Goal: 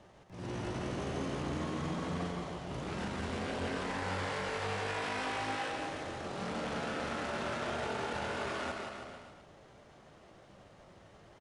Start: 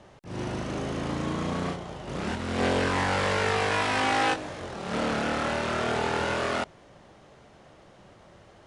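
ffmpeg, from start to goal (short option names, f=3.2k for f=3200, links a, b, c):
-af "alimiter=limit=-24dB:level=0:latency=1:release=33,atempo=0.76,aecho=1:1:170|323|460.7|584.6|696.2:0.631|0.398|0.251|0.158|0.1,volume=-6dB"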